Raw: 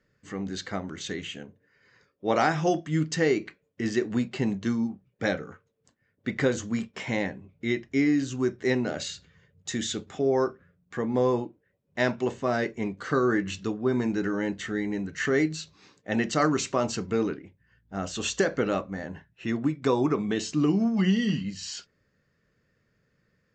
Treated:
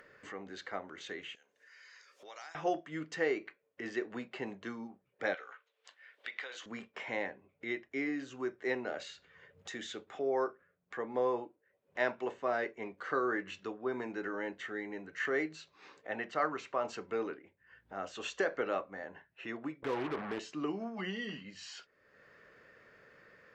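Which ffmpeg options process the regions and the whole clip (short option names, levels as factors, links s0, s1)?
-filter_complex "[0:a]asettb=1/sr,asplit=3[s0][s1][s2];[s0]atrim=end=1.354[s3];[s1]atrim=start=1.35:end=2.55,asetpts=PTS-STARTPTS,afade=t=in:d=0.004:c=qsin,afade=t=out:st=1.196:d=0.004:c=qsin,bandpass=f=6400:t=q:w=2.3,acompressor=mode=upward:threshold=0.00282:ratio=2.5:attack=3.2:release=140:knee=2.83:detection=peak[s4];[s2]atrim=start=2.546[s5];[s3][s4]acrossfade=d=0.004:c1=hsin:c2=qsin[s6];[s6][s5]acrossfade=d=0.004:c1=qsin:c2=hsin,asettb=1/sr,asplit=3[s7][s8][s9];[s7]atrim=end=5.344[s10];[s8]atrim=start=5.34:end=6.66,asetpts=PTS-STARTPTS,afade=t=in:d=0.004:c=qsin,afade=t=out:st=1.316:d=0.004:c=qsin,highpass=660,acompressor=threshold=0.0112:ratio=6:attack=3.2:release=140:knee=1:detection=peak,equalizer=f=3500:w=0.78:g=15[s11];[s9]atrim=start=6.656[s12];[s10][s11]acrossfade=d=0.004:c1=hsin:c2=qsin[s13];[s13][s12]acrossfade=d=0.004:c1=qsin:c2=hsin,asettb=1/sr,asplit=3[s14][s15][s16];[s14]atrim=end=16.114[s17];[s15]atrim=start=16.11:end=16.85,asetpts=PTS-STARTPTS,afade=t=in:d=0.004:c=qsin,afade=t=out:st=0.736:d=0.004:c=qsin,lowpass=f=2500:p=1,equalizer=f=330:t=o:w=1.3:g=-4.5[s18];[s16]atrim=start=16.846[s19];[s17][s18]acrossfade=d=0.004:c1=hsin:c2=qsin[s20];[s20][s19]acrossfade=d=0.004:c1=qsin:c2=hsin,asettb=1/sr,asplit=3[s21][s22][s23];[s21]atrim=end=19.824[s24];[s22]atrim=start=19.82:end=20.39,asetpts=PTS-STARTPTS,afade=t=in:d=0.004:c=qsin,afade=t=out:st=0.566:d=0.004:c=qsin,aemphasis=mode=reproduction:type=riaa,acompressor=threshold=0.0562:ratio=2:attack=3.2:release=140:knee=1:detection=peak,acrusher=bits=4:mix=0:aa=0.5[s25];[s23]atrim=start=20.386[s26];[s24][s25]acrossfade=d=0.004:c1=hsin:c2=qsin[s27];[s27][s26]acrossfade=d=0.004:c1=qsin:c2=hsin,acrossover=split=380 3000:gain=0.112 1 0.2[s28][s29][s30];[s28][s29][s30]amix=inputs=3:normalize=0,acompressor=mode=upward:threshold=0.0126:ratio=2.5,volume=0.596"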